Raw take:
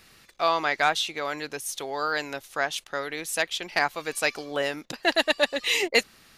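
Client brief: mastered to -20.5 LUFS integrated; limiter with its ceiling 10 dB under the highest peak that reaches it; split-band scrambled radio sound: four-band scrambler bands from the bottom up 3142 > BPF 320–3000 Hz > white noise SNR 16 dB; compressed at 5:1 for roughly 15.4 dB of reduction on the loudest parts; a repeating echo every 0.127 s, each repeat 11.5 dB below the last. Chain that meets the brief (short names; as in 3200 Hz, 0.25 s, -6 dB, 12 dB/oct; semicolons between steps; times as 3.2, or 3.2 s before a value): compressor 5:1, threshold -35 dBFS; limiter -27 dBFS; feedback echo 0.127 s, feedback 27%, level -11.5 dB; four-band scrambler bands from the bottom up 3142; BPF 320–3000 Hz; white noise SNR 16 dB; gain +20 dB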